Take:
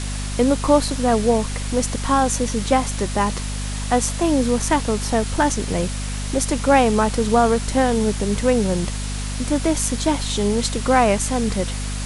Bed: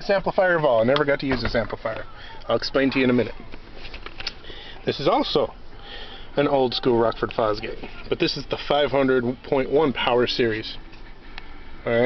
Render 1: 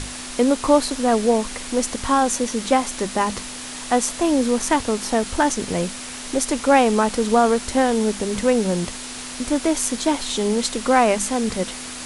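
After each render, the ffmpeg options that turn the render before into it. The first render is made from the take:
-af "bandreject=f=50:t=h:w=6,bandreject=f=100:t=h:w=6,bandreject=f=150:t=h:w=6,bandreject=f=200:t=h:w=6"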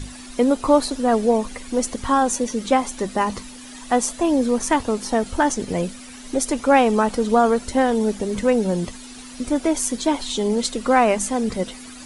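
-af "afftdn=nr=12:nf=-33"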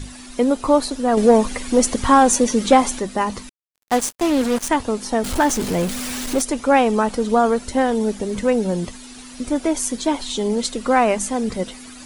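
-filter_complex "[0:a]asettb=1/sr,asplit=3[a][b][c];[a]atrim=end=1.174[d];[b]atrim=start=1.17:end=2.99,asetpts=PTS-STARTPTS,afade=t=in:d=0.004:c=qsin,afade=t=out:st=1.816:d=0.004:c=qsin,acontrast=71[e];[c]atrim=start=2.986[f];[d][e]acrossfade=d=0.004:c1=hsin:c2=qsin[g];[g][f]acrossfade=d=0.004:c1=qsin:c2=hsin,asettb=1/sr,asplit=3[h][i][j];[h]atrim=end=3.494[k];[i]atrim=start=3.49:end=4.69,asetpts=PTS-STARTPTS,afade=t=in:d=0.004:c=qsin,afade=t=out:st=1.196:d=0.004:c=qsin,acrusher=bits=3:mix=0:aa=0.5[l];[j]atrim=start=4.686[m];[k][l]acrossfade=d=0.004:c1=hsin:c2=qsin[n];[n][m]acrossfade=d=0.004:c1=qsin:c2=hsin,asettb=1/sr,asplit=3[o][p][q];[o]atrim=end=5.244[r];[p]atrim=start=5.24:end=6.42,asetpts=PTS-STARTPTS,afade=t=in:d=0.004:c=qsin,afade=t=out:st=1.176:d=0.004:c=qsin,aeval=exprs='val(0)+0.5*0.0708*sgn(val(0))':c=same[s];[q]atrim=start=6.416[t];[r][s]acrossfade=d=0.004:c1=hsin:c2=qsin[u];[u][t]acrossfade=d=0.004:c1=qsin:c2=hsin"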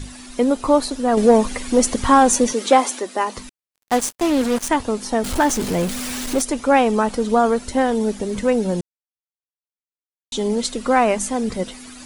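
-filter_complex "[0:a]asettb=1/sr,asplit=3[a][b][c];[a]atrim=end=2.534[d];[b]atrim=start=2.53:end=3.37,asetpts=PTS-STARTPTS,afade=t=in:d=0.004:c=qsin,afade=t=out:st=0.836:d=0.004:c=qsin,highpass=f=290:w=0.5412,highpass=f=290:w=1.3066[e];[c]atrim=start=3.366[f];[d][e]acrossfade=d=0.004:c1=hsin:c2=qsin[g];[g][f]acrossfade=d=0.004:c1=qsin:c2=hsin,asplit=3[h][i][j];[h]atrim=end=8.81,asetpts=PTS-STARTPTS,afade=t=out:st=8.806:d=0.004:c=hsin[k];[i]atrim=start=8.81:end=10.32,asetpts=PTS-STARTPTS,volume=0[l];[j]atrim=start=10.32,asetpts=PTS-STARTPTS,afade=t=in:d=0.004:c=hsin[m];[k][l][m]concat=n=3:v=0:a=1"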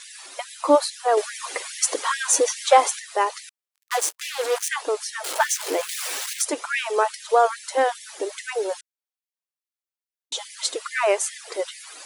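-af "afftfilt=real='re*gte(b*sr/1024,280*pow(1700/280,0.5+0.5*sin(2*PI*2.4*pts/sr)))':imag='im*gte(b*sr/1024,280*pow(1700/280,0.5+0.5*sin(2*PI*2.4*pts/sr)))':win_size=1024:overlap=0.75"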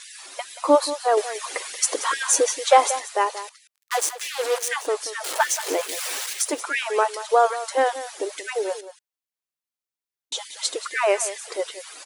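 -af "aecho=1:1:181:0.211"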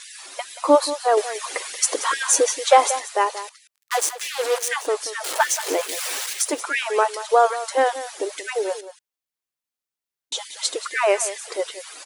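-af "volume=1.5dB,alimiter=limit=-2dB:level=0:latency=1"

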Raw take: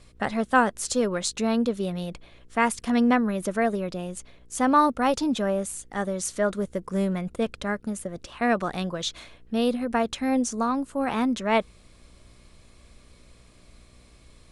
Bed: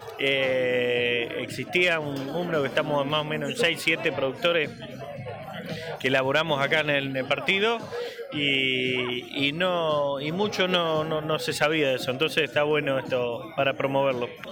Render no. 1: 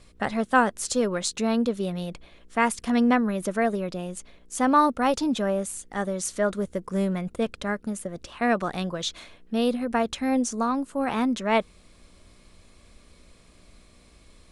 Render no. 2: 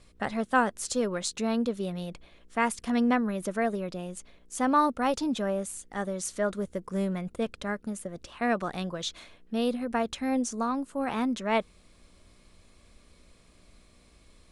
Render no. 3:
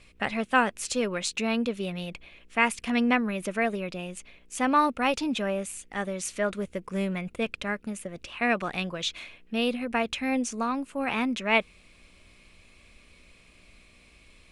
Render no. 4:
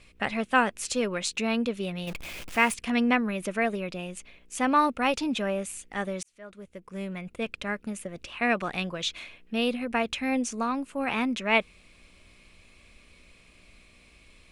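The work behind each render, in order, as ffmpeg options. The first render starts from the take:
-af "bandreject=f=60:t=h:w=4,bandreject=f=120:t=h:w=4"
-af "volume=-4dB"
-af "equalizer=f=2.5k:w=2:g=13"
-filter_complex "[0:a]asettb=1/sr,asplit=3[a][b][c];[a]atrim=end=2.074[d];[b]atrim=start=2.07:end=2.74,asetpts=PTS-STARTPTS,afade=t=in:d=0.004:c=qsin,afade=t=out:st=0.666:d=0.004:c=qsin,aeval=exprs='val(0)+0.5*0.0178*sgn(val(0))':c=same[e];[c]atrim=start=2.736[f];[d][e]acrossfade=d=0.004:c1=hsin:c2=qsin[g];[g][f]acrossfade=d=0.004:c1=qsin:c2=hsin,asplit=2[h][i];[h]atrim=end=6.23,asetpts=PTS-STARTPTS,afade=t=out:st=6.226:d=0.004:c=hsin[j];[i]atrim=start=6.23,asetpts=PTS-STARTPTS,afade=t=in:d=1.62[k];[j][k]concat=n=2:v=0:a=1"

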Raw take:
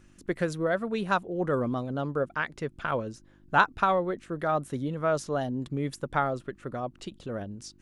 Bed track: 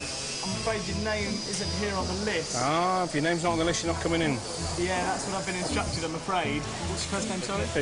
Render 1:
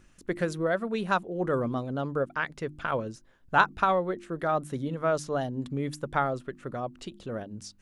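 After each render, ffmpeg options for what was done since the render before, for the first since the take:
-af "bandreject=f=50:t=h:w=4,bandreject=f=100:t=h:w=4,bandreject=f=150:t=h:w=4,bandreject=f=200:t=h:w=4,bandreject=f=250:t=h:w=4,bandreject=f=300:t=h:w=4,bandreject=f=350:t=h:w=4"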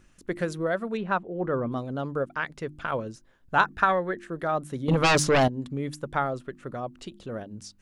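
-filter_complex "[0:a]asettb=1/sr,asplit=3[a][b][c];[a]atrim=end=0.974[d];[b]atrim=start=0.97:end=1.72,asetpts=PTS-STARTPTS,afade=t=in:d=0.004:c=qsin,afade=t=out:st=0.746:d=0.004:c=qsin,lowpass=2.5k[e];[c]atrim=start=1.716[f];[d][e]acrossfade=d=0.004:c1=hsin:c2=qsin[g];[g][f]acrossfade=d=0.004:c1=qsin:c2=hsin,asettb=1/sr,asplit=3[h][i][j];[h]atrim=end=3.654[k];[i]atrim=start=3.65:end=4.27,asetpts=PTS-STARTPTS,afade=t=in:d=0.004:c=qsin,afade=t=out:st=0.616:d=0.004:c=qsin,equalizer=f=1.7k:w=4.2:g=14.5[l];[j]atrim=start=4.266[m];[k][l]acrossfade=d=0.004:c1=hsin:c2=qsin[n];[n][m]acrossfade=d=0.004:c1=qsin:c2=hsin,asettb=1/sr,asplit=3[o][p][q];[o]atrim=end=4.884[r];[p]atrim=start=4.88:end=5.48,asetpts=PTS-STARTPTS,afade=t=in:d=0.004:c=qsin,afade=t=out:st=0.596:d=0.004:c=qsin,aeval=exprs='0.158*sin(PI/2*3.55*val(0)/0.158)':c=same[s];[q]atrim=start=5.476[t];[r][s]acrossfade=d=0.004:c1=hsin:c2=qsin[u];[u][t]acrossfade=d=0.004:c1=qsin:c2=hsin"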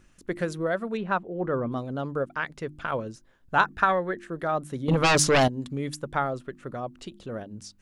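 -filter_complex "[0:a]asettb=1/sr,asplit=3[a][b][c];[a]atrim=end=5.194[d];[b]atrim=start=5.19:end=5.97,asetpts=PTS-STARTPTS,afade=t=in:d=0.004:c=qsin,afade=t=out:st=0.776:d=0.004:c=qsin,equalizer=f=7.6k:w=0.32:g=5.5[e];[c]atrim=start=5.966[f];[d][e]acrossfade=d=0.004:c1=hsin:c2=qsin[g];[g][f]acrossfade=d=0.004:c1=qsin:c2=hsin"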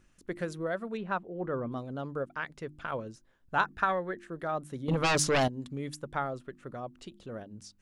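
-af "volume=-6dB"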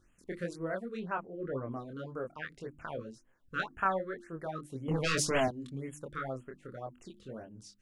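-af "flanger=delay=22.5:depth=4.3:speed=1.9,afftfilt=real='re*(1-between(b*sr/1024,750*pow(4800/750,0.5+0.5*sin(2*PI*1.9*pts/sr))/1.41,750*pow(4800/750,0.5+0.5*sin(2*PI*1.9*pts/sr))*1.41))':imag='im*(1-between(b*sr/1024,750*pow(4800/750,0.5+0.5*sin(2*PI*1.9*pts/sr))/1.41,750*pow(4800/750,0.5+0.5*sin(2*PI*1.9*pts/sr))*1.41))':win_size=1024:overlap=0.75"

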